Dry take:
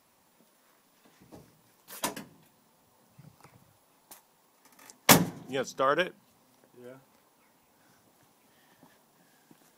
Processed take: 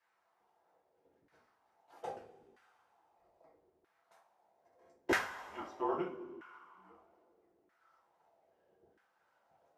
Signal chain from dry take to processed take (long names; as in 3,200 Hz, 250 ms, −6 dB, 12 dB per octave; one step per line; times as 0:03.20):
coupled-rooms reverb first 0.35 s, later 2.5 s, from −19 dB, DRR −5.5 dB
frequency shifter −180 Hz
auto-filter band-pass saw down 0.78 Hz 340–1,600 Hz
level −7 dB